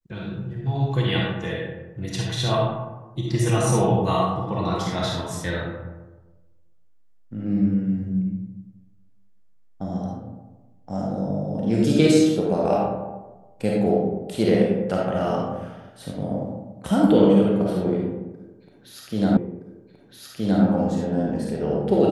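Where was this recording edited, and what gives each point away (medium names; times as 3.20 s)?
19.37 s: repeat of the last 1.27 s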